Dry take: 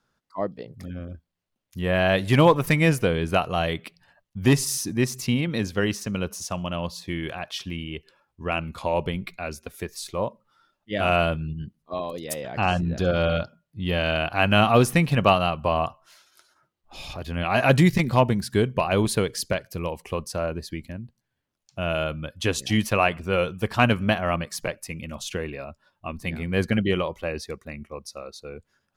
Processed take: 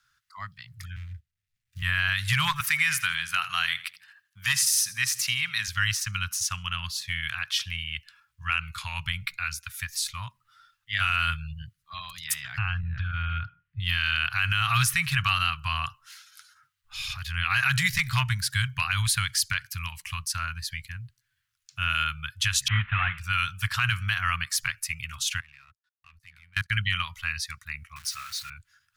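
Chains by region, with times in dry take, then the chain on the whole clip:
0.96–1.82 s: median filter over 41 samples + high-order bell 1.1 kHz -11 dB 1.2 oct + three bands compressed up and down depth 40%
2.60–5.68 s: high-pass 240 Hz + feedback delay 81 ms, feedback 33%, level -18 dB
12.58–13.80 s: low-pass 2.7 kHz 24 dB/octave + bass shelf 140 Hz +10 dB + compression, threshold -23 dBFS
22.68–23.18 s: CVSD coder 16 kbps + peaking EQ 320 Hz +5 dB 2.5 oct
25.40–26.70 s: level held to a coarse grid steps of 21 dB + power-law waveshaper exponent 1.4
27.96–28.50 s: jump at every zero crossing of -40 dBFS + high-pass 140 Hz 6 dB/octave
whole clip: elliptic band-stop 110–1400 Hz, stop band 80 dB; bass shelf 100 Hz -11.5 dB; peak limiter -19.5 dBFS; trim +7 dB

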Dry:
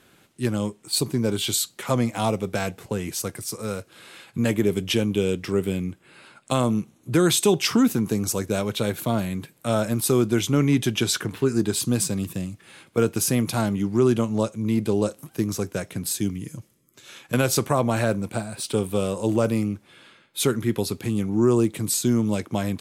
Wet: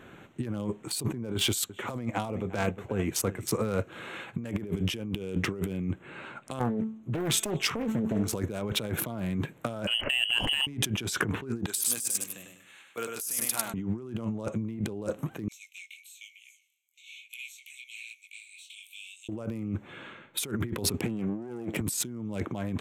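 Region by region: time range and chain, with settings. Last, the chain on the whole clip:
1.34–3.51 s: band-stop 160 Hz, Q 5.2 + delay 353 ms -17 dB + upward expansion, over -34 dBFS
6.59–8.33 s: feedback comb 220 Hz, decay 0.5 s, mix 70% + loudspeaker Doppler distortion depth 0.93 ms
9.87–10.67 s: frequency inversion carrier 3.1 kHz + compressor with a negative ratio -29 dBFS
11.66–13.74 s: differentiator + feedback delay 100 ms, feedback 36%, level -4.5 dB
15.48–19.29 s: Chebyshev high-pass 2.2 kHz, order 8 + compression 8:1, threshold -36 dBFS + chorus 1.1 Hz, delay 16.5 ms, depth 7.6 ms
20.98–21.81 s: comb filter that takes the minimum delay 0.38 ms + high-pass 130 Hz
whole clip: local Wiener filter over 9 samples; dynamic bell 4.1 kHz, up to -5 dB, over -47 dBFS, Q 2.9; compressor with a negative ratio -33 dBFS, ratio -1; trim +1 dB

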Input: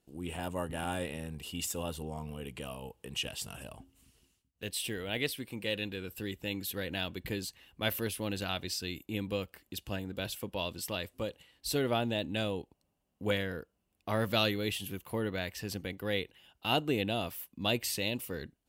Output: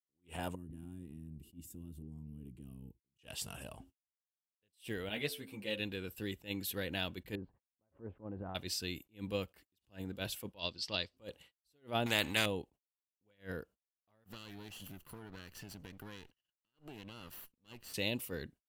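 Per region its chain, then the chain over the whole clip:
0.55–3.19 s: FFT filter 340 Hz 0 dB, 550 Hz -29 dB, 1 kHz -25 dB, 4.9 kHz -22 dB, 14 kHz -10 dB + compression 2.5:1, threshold -44 dBFS
5.09–5.80 s: de-hum 88.24 Hz, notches 19 + three-phase chorus
7.35–8.55 s: low-pass 1.1 kHz 24 dB/octave + compression 10:1, threshold -36 dBFS
10.59–11.17 s: resonant low-pass 4.7 kHz, resonance Q 5.3 + upward expansion, over -47 dBFS
12.06–12.46 s: peaking EQ 2.1 kHz +14.5 dB 1.1 oct + spectrum-flattening compressor 2:1
14.24–17.94 s: comb filter that takes the minimum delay 0.69 ms + compression 20:1, threshold -43 dBFS
whole clip: gate -56 dBFS, range -54 dB; attacks held to a fixed rise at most 270 dB/s; trim -2 dB

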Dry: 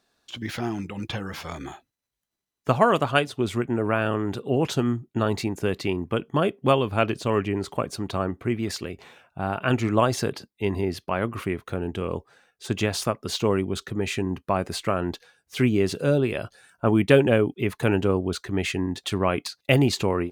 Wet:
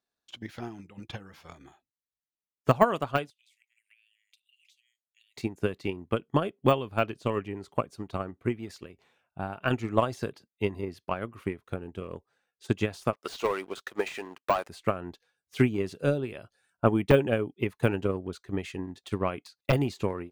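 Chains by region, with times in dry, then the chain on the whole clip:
3.30–5.37 s: steep high-pass 2.1 kHz 72 dB/octave + compression 4:1, threshold -46 dBFS
13.13–14.69 s: high-pass 650 Hz + waveshaping leveller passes 3
whole clip: transient shaper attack +8 dB, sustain +2 dB; de-esser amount 55%; upward expansion 1.5:1, over -39 dBFS; trim -5 dB

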